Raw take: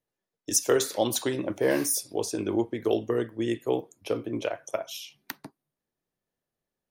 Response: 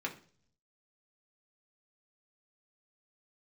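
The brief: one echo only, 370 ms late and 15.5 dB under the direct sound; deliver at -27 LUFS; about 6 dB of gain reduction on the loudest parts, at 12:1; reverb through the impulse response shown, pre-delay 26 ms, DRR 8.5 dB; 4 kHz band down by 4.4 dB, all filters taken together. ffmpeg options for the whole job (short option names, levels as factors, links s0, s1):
-filter_complex "[0:a]equalizer=f=4000:t=o:g=-6,acompressor=threshold=0.0562:ratio=12,aecho=1:1:370:0.168,asplit=2[s0][s1];[1:a]atrim=start_sample=2205,adelay=26[s2];[s1][s2]afir=irnorm=-1:irlink=0,volume=0.266[s3];[s0][s3]amix=inputs=2:normalize=0,volume=1.68"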